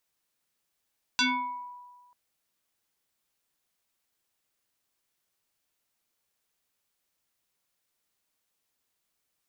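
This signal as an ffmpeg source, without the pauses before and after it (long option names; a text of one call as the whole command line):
ffmpeg -f lavfi -i "aevalsrc='0.1*pow(10,-3*t/1.46)*sin(2*PI*982*t+4.2*pow(10,-3*t/0.65)*sin(2*PI*1.26*982*t))':duration=0.94:sample_rate=44100" out.wav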